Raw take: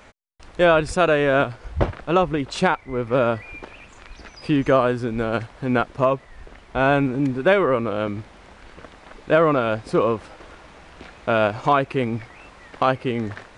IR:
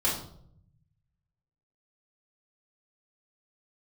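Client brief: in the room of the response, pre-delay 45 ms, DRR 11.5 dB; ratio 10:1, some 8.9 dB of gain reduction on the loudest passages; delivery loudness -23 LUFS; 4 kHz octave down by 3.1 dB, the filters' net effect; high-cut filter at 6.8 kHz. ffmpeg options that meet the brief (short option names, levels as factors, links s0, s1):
-filter_complex "[0:a]lowpass=6800,equalizer=f=4000:t=o:g=-4,acompressor=threshold=0.0891:ratio=10,asplit=2[s0][s1];[1:a]atrim=start_sample=2205,adelay=45[s2];[s1][s2]afir=irnorm=-1:irlink=0,volume=0.0891[s3];[s0][s3]amix=inputs=2:normalize=0,volume=1.58"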